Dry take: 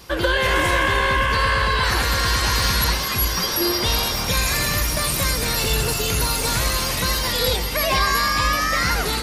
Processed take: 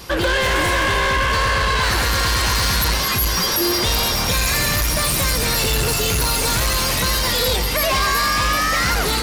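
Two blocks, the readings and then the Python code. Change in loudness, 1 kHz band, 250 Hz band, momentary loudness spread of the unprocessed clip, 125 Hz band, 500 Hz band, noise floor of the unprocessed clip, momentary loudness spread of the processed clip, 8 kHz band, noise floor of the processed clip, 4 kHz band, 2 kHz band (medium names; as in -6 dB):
+2.0 dB, +1.5 dB, +2.0 dB, 2 LU, +1.5 dB, +1.5 dB, -24 dBFS, 1 LU, +3.0 dB, -20 dBFS, +2.0 dB, +1.5 dB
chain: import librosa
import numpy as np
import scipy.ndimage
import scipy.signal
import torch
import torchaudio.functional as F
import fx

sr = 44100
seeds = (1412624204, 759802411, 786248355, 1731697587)

y = 10.0 ** (-22.0 / 20.0) * np.tanh(x / 10.0 ** (-22.0 / 20.0))
y = y * librosa.db_to_amplitude(7.0)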